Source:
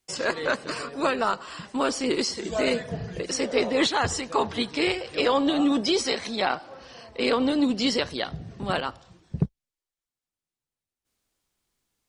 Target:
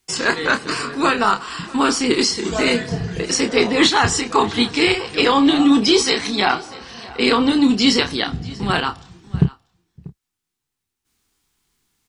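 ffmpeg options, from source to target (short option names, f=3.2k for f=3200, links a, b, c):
-filter_complex "[0:a]equalizer=f=580:t=o:w=0.38:g=-13.5,asplit=2[a][b];[b]adelay=29,volume=-7.5dB[c];[a][c]amix=inputs=2:normalize=0,asplit=2[d][e];[e]aecho=0:1:640:0.0891[f];[d][f]amix=inputs=2:normalize=0,volume=9dB"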